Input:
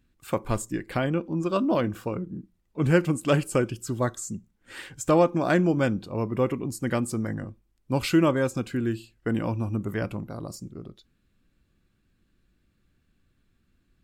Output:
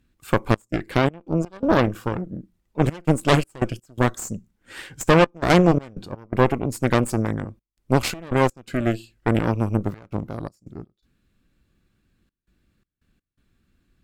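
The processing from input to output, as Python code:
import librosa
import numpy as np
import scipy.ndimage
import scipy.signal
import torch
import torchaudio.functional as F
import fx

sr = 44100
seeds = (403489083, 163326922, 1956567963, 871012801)

y = fx.cheby_harmonics(x, sr, harmonics=(6,), levels_db=(-9,), full_scale_db=-7.0)
y = fx.step_gate(y, sr, bpm=83, pattern='xxx.xx.x.xxxx', floor_db=-24.0, edge_ms=4.5)
y = fx.running_max(y, sr, window=5, at=(9.82, 10.37))
y = F.gain(torch.from_numpy(y), 2.5).numpy()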